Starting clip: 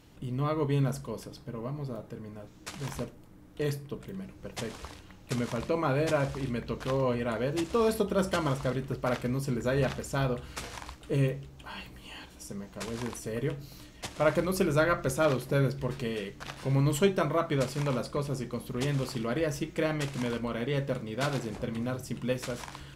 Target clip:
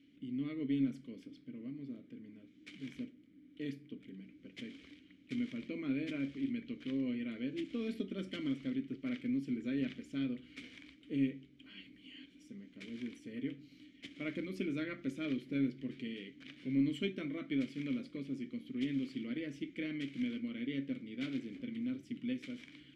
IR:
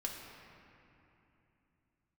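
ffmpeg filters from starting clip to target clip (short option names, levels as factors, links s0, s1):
-filter_complex "[0:a]asplit=3[s0][s1][s2];[s0]bandpass=f=270:t=q:w=8,volume=1[s3];[s1]bandpass=f=2290:t=q:w=8,volume=0.501[s4];[s2]bandpass=f=3010:t=q:w=8,volume=0.355[s5];[s3][s4][s5]amix=inputs=3:normalize=0,aeval=exprs='0.0562*(cos(1*acos(clip(val(0)/0.0562,-1,1)))-cos(1*PI/2))+0.00178*(cos(2*acos(clip(val(0)/0.0562,-1,1)))-cos(2*PI/2))':c=same,volume=1.41"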